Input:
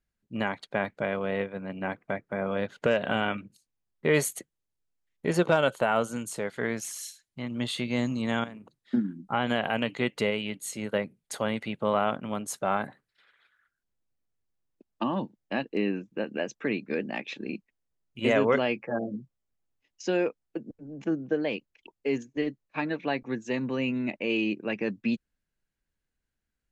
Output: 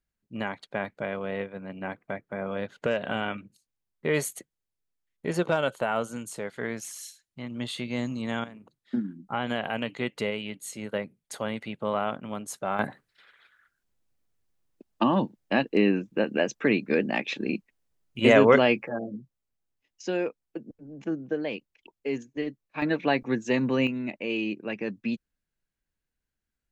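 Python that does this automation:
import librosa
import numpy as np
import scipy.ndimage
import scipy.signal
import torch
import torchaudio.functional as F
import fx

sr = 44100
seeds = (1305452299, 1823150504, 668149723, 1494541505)

y = fx.gain(x, sr, db=fx.steps((0.0, -2.5), (12.79, 6.0), (18.88, -2.0), (22.82, 5.0), (23.87, -2.0)))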